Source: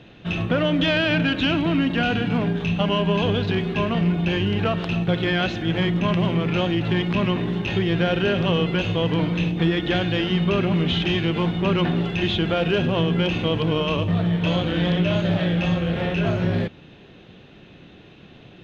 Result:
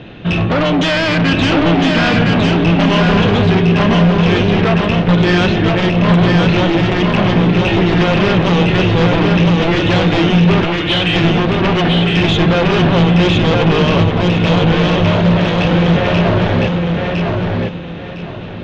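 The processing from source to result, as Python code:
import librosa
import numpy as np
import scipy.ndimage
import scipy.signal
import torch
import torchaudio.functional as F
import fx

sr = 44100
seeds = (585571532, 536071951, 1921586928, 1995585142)

p1 = fx.highpass(x, sr, hz=1200.0, slope=12, at=(10.64, 11.16))
p2 = fx.fold_sine(p1, sr, drive_db=12, ceiling_db=-8.5)
p3 = p1 + (p2 * 10.0 ** (-4.5 / 20.0))
p4 = fx.air_absorb(p3, sr, metres=140.0)
y = fx.echo_feedback(p4, sr, ms=1008, feedback_pct=28, wet_db=-3)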